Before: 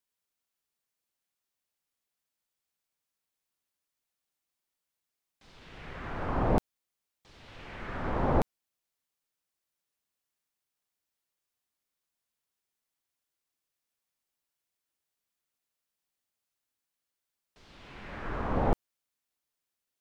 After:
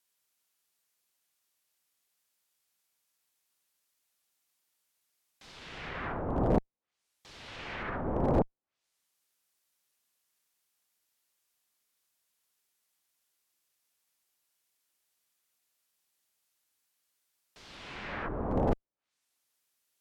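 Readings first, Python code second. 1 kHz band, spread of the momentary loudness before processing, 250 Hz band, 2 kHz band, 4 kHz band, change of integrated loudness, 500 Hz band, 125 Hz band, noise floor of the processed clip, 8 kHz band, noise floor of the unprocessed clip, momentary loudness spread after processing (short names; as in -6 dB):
-2.0 dB, 20 LU, +1.5 dB, +1.0 dB, +4.0 dB, -0.5 dB, +1.0 dB, 0.0 dB, -84 dBFS, n/a, under -85 dBFS, 19 LU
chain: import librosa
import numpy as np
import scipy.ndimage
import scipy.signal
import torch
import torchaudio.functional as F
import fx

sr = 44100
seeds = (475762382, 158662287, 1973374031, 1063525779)

y = fx.env_lowpass_down(x, sr, base_hz=590.0, full_db=-31.5)
y = fx.clip_asym(y, sr, top_db=-22.5, bottom_db=-15.5)
y = fx.tilt_eq(y, sr, slope=1.5)
y = y * 10.0 ** (5.0 / 20.0)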